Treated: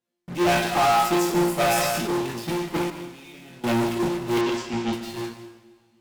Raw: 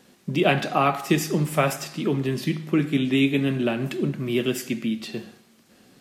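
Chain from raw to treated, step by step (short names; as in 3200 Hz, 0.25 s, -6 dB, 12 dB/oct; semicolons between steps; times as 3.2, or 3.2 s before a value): resonator bank A#2 fifth, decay 0.5 s; in parallel at -8 dB: fuzz box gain 57 dB, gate -53 dBFS; on the sum: dynamic EQ 840 Hz, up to +5 dB, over -39 dBFS, Q 4.2; gate -22 dBFS, range -13 dB; 2.9–3.64 level quantiser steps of 23 dB; 4.41–4.93 LPF 6500 Hz 24 dB/oct; reverb, pre-delay 0.131 s, DRR 9.5 dB; 1.55–2.17 sustainer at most 21 dB/s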